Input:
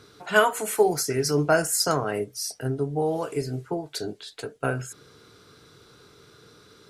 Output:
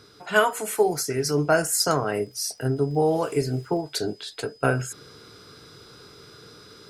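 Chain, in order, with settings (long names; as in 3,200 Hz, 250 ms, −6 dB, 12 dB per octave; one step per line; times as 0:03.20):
0:02.21–0:03.80: surface crackle 130 per second −47 dBFS
steady tone 5,000 Hz −57 dBFS
speech leveller within 3 dB 2 s
level +1.5 dB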